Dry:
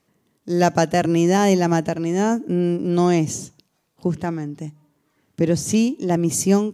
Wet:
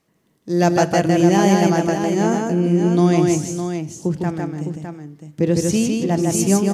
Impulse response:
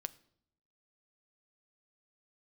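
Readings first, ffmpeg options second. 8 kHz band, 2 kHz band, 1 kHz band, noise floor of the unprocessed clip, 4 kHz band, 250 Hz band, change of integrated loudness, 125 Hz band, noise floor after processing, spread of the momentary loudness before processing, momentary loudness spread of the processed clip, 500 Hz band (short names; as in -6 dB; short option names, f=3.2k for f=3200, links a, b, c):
+1.5 dB, +2.0 dB, +1.5 dB, -69 dBFS, +2.0 dB, +2.5 dB, +2.0 dB, +3.0 dB, -63 dBFS, 11 LU, 11 LU, +2.0 dB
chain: -filter_complex "[0:a]aecho=1:1:155|320|609:0.708|0.15|0.398[a];[1:a]atrim=start_sample=2205[b];[a][b]afir=irnorm=-1:irlink=0,volume=2dB"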